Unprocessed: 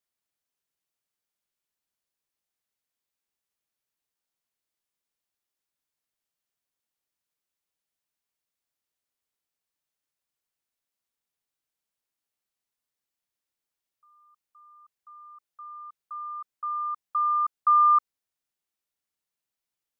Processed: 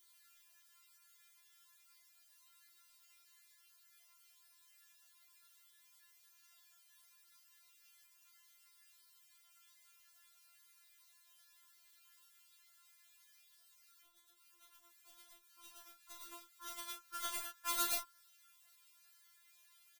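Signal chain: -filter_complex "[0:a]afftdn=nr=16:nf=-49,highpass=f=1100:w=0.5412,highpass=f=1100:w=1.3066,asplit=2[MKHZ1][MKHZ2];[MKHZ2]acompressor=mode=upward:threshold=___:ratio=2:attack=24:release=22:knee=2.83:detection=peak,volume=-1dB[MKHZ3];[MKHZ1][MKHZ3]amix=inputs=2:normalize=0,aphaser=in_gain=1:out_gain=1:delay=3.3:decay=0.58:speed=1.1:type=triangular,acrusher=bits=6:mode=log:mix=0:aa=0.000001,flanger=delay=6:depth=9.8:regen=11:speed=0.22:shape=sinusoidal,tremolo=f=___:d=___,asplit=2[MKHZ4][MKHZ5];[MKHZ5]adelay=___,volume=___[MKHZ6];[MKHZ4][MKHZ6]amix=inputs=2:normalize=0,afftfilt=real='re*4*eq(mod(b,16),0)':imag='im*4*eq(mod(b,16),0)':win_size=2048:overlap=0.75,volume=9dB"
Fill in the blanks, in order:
-37dB, 50, 0.71, 32, -5dB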